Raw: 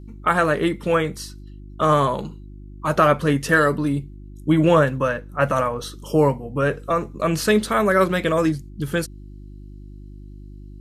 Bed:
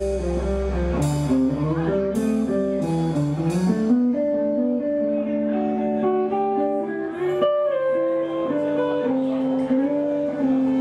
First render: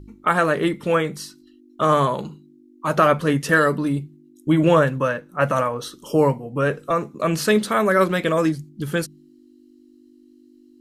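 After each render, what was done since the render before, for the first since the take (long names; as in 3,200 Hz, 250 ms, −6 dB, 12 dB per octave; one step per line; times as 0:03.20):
hum removal 50 Hz, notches 4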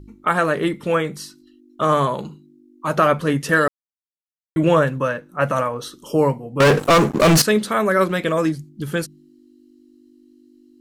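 0:03.68–0:04.56: silence
0:06.60–0:07.42: leveller curve on the samples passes 5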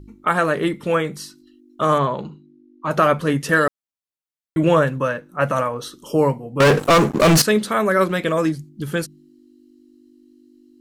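0:01.98–0:02.91: high-frequency loss of the air 140 metres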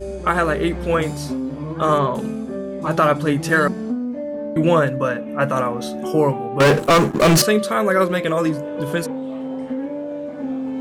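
mix in bed −5.5 dB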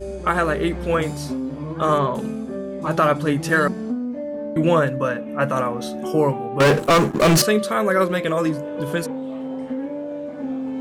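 level −1.5 dB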